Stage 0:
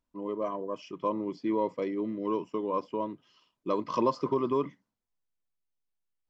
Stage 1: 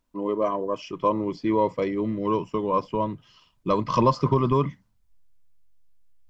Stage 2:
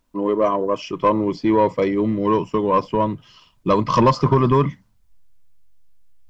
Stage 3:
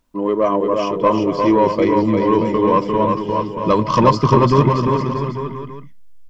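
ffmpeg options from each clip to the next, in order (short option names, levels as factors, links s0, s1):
-af "asubboost=boost=12:cutoff=98,volume=2.66"
-af "asoftclip=type=tanh:threshold=0.211,volume=2.24"
-af "aecho=1:1:350|630|854|1033|1177:0.631|0.398|0.251|0.158|0.1,volume=1.19"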